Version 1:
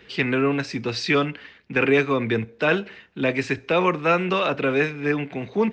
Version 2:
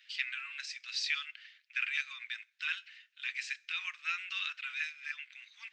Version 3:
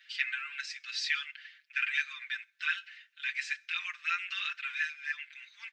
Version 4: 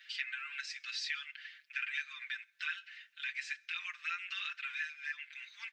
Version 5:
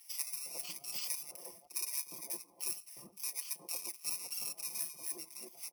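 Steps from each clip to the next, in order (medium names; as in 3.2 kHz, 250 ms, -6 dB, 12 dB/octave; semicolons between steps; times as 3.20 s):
Bessel high-pass 2.8 kHz, order 8; trim -4.5 dB
peaking EQ 1.6 kHz +7 dB 0.68 oct; comb 5.8 ms, depth 88%; trim -2 dB
compression 2:1, threshold -44 dBFS, peak gain reduction 10.5 dB; trim +2 dB
bit-reversed sample order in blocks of 32 samples; bands offset in time highs, lows 360 ms, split 980 Hz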